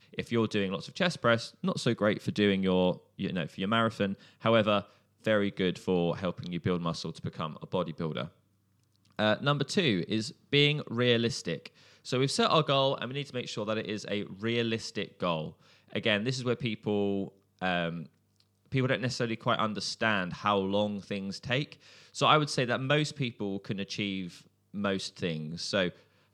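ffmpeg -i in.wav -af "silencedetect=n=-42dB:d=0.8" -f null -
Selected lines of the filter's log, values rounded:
silence_start: 8.28
silence_end: 9.19 | silence_duration: 0.91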